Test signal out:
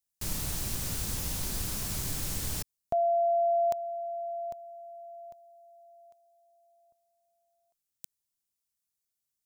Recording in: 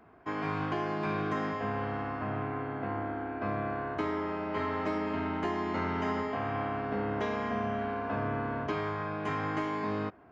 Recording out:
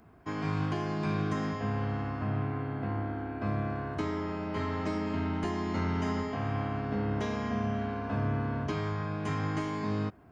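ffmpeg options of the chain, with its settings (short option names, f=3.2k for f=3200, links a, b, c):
-af "bass=f=250:g=11,treble=f=4k:g=13,volume=-3.5dB"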